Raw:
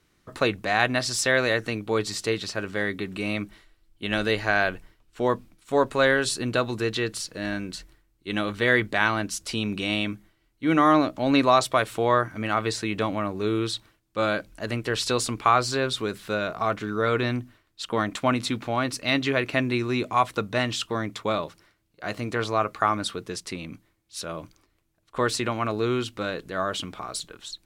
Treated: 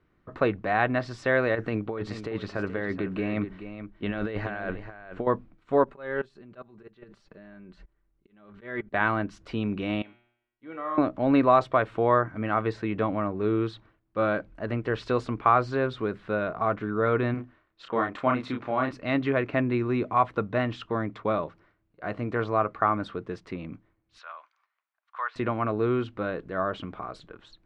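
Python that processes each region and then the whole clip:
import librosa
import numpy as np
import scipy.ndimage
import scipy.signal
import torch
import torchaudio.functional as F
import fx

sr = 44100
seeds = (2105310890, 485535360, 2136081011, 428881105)

y = fx.chain(x, sr, fx.over_compress(threshold_db=-29.0, ratio=-1.0),
    fx.echo_single(ms=427, db=-11.0), at=(1.55, 5.27))
y = fx.chain(y, sr, fx.level_steps(step_db=24),
    fx.auto_swell(attack_ms=311.0),
    fx.comb(ms=5.1, depth=0.44), at=(5.84, 8.94))
y = fx.chain(y, sr, fx.bass_treble(bass_db=-11, treble_db=3),
    fx.comb_fb(f0_hz=120.0, decay_s=0.76, harmonics='all', damping=0.0, mix_pct=90), at=(10.02, 10.98))
y = fx.chain(y, sr, fx.low_shelf(hz=250.0, db=-9.0),
    fx.doubler(ms=31.0, db=-3.5), at=(17.34, 18.91))
y = fx.chain(y, sr, fx.highpass(hz=960.0, slope=24),
    fx.env_lowpass_down(base_hz=2200.0, full_db=-28.5), at=(24.18, 25.36))
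y = scipy.signal.sosfilt(scipy.signal.butter(2, 1600.0, 'lowpass', fs=sr, output='sos'), y)
y = fx.notch(y, sr, hz=870.0, q=26.0)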